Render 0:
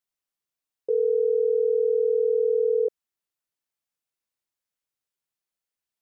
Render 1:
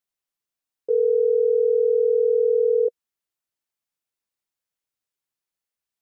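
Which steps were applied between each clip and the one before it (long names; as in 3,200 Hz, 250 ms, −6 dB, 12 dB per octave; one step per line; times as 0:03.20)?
dynamic equaliser 480 Hz, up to +4 dB, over −31 dBFS, Q 5.7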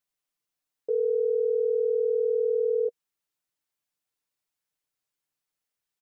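brickwall limiter −22 dBFS, peak gain reduction 9 dB
comb filter 6.7 ms, depth 48%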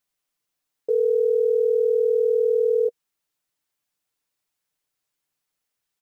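floating-point word with a short mantissa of 6 bits
level +5 dB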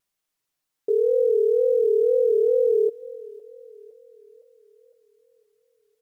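echo with a time of its own for lows and highs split 470 Hz, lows 137 ms, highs 511 ms, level −16 dB
tape wow and flutter 110 cents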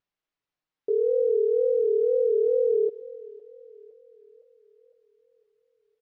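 high-frequency loss of the air 190 metres
single-tap delay 127 ms −22 dB
level −2.5 dB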